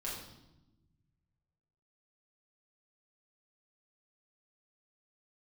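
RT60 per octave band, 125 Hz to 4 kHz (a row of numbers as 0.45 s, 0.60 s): 2.4 s, 1.7 s, 1.1 s, 0.85 s, 0.75 s, 0.80 s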